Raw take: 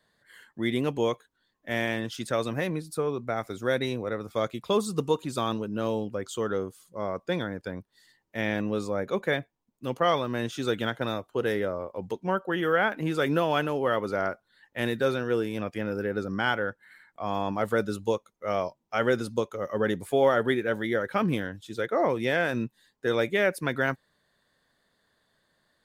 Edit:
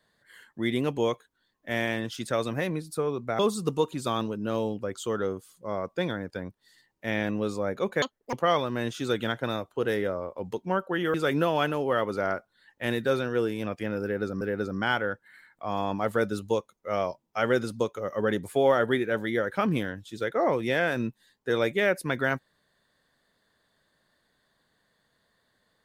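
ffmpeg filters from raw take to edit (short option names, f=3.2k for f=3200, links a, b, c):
-filter_complex "[0:a]asplit=6[a][b][c][d][e][f];[a]atrim=end=3.392[g];[b]atrim=start=4.698:end=9.334[h];[c]atrim=start=9.33:end=9.91,asetpts=PTS-STARTPTS,asetrate=82467,aresample=44100,atrim=end_sample=13678,asetpts=PTS-STARTPTS[i];[d]atrim=start=9.906:end=12.722[j];[e]atrim=start=13.088:end=16.362[k];[f]atrim=start=15.978[l];[g][h]acrossfade=d=0.004:c1=hsin:c2=hsin[m];[m][i]acrossfade=d=0.004:c1=hsin:c2=hsin[n];[n][j]acrossfade=d=0.004:c1=hsin:c2=hsin[o];[o][k]acrossfade=d=0.004:c1=hsin:c2=hsin[p];[p][l]acrossfade=d=0.004:c1=hsin:c2=hsin"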